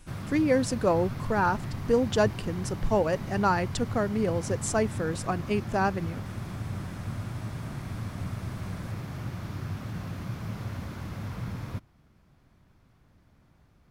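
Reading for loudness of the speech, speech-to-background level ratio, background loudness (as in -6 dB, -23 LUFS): -28.0 LUFS, 8.5 dB, -36.5 LUFS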